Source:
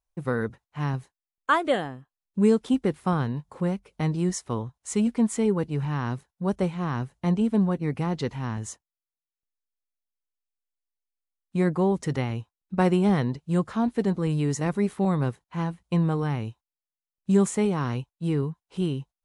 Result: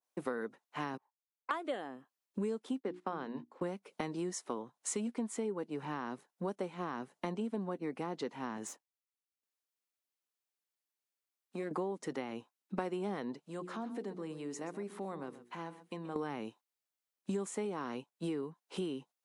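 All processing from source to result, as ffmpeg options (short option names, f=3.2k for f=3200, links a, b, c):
-filter_complex "[0:a]asettb=1/sr,asplit=3[a][b][c];[a]atrim=end=0.974[d];[b]atrim=start=0.97:end=1.51,asetpts=PTS-STARTPTS,afade=t=in:d=0.004:c=qsin,afade=t=out:st=0.536:d=0.004:c=qsin,bandpass=f=900:t=q:w=7.6,aeval=exprs='(tanh(22.4*val(0)+0.8)-tanh(0.8))/22.4':c=same[e];[c]atrim=start=1.506[f];[d][e]acrossfade=d=0.004:c1=hsin:c2=qsin[g];[g][f]acrossfade=d=0.004:c1=qsin:c2=hsin,asettb=1/sr,asplit=3[h][i][j];[h]atrim=end=2.804[k];[i]atrim=start=2.8:end=3.62,asetpts=PTS-STARTPTS,afade=t=in:d=0.004:c=qsin,afade=t=out:st=0.816:d=0.004:c=qsin,bandreject=f=60:t=h:w=6,bandreject=f=120:t=h:w=6,bandreject=f=180:t=h:w=6,bandreject=f=240:t=h:w=6,bandreject=f=300:t=h:w=6,bandreject=f=360:t=h:w=6,agate=range=-16dB:threshold=-41dB:ratio=16:release=100:detection=peak,highpass=130,lowpass=5.2k[l];[j]atrim=start=3.616[m];[k][l]acrossfade=d=0.004:c1=hsin:c2=qsin[n];[n][m]acrossfade=d=0.004:c1=qsin:c2=hsin,asettb=1/sr,asplit=3[o][p][q];[o]atrim=end=8.674[r];[p]atrim=start=8.67:end=11.71,asetpts=PTS-STARTPTS,afade=t=in:d=0.004:c=qsin,afade=t=out:st=3.036:d=0.004:c=qsin,aeval=exprs='if(lt(val(0),0),0.447*val(0),val(0))':c=same,acompressor=threshold=-40dB:ratio=2:attack=3.2:release=140:knee=1:detection=peak[s];[q]atrim=start=11.706[t];[r][s]acrossfade=d=0.004:c1=hsin:c2=qsin[u];[u][t]acrossfade=d=0.004:c1=qsin:c2=hsin,asettb=1/sr,asplit=3[v][w][x];[v]atrim=end=13.414[y];[w]atrim=start=13.41:end=16.16,asetpts=PTS-STARTPTS,afade=t=in:d=0.004:c=qsin,afade=t=out:st=2.746:d=0.004:c=qsin,bandreject=f=60:t=h:w=6,bandreject=f=120:t=h:w=6,bandreject=f=180:t=h:w=6,bandreject=f=240:t=h:w=6,bandreject=f=300:t=h:w=6,bandreject=f=360:t=h:w=6,bandreject=f=420:t=h:w=6,bandreject=f=480:t=h:w=6,acompressor=threshold=-44dB:ratio=2.5:attack=3.2:release=140:knee=1:detection=peak,aecho=1:1:128:0.188,atrim=end_sample=121275[z];[x]atrim=start=16.156[aa];[y][z]acrossfade=d=0.004:c1=hsin:c2=qsin[ab];[ab][aa]acrossfade=d=0.004:c1=qsin:c2=hsin,highpass=f=240:w=0.5412,highpass=f=240:w=1.3066,acompressor=threshold=-38dB:ratio=6,adynamicequalizer=threshold=0.00126:dfrequency=1500:dqfactor=0.7:tfrequency=1500:tqfactor=0.7:attack=5:release=100:ratio=0.375:range=2:mode=cutabove:tftype=highshelf,volume=3dB"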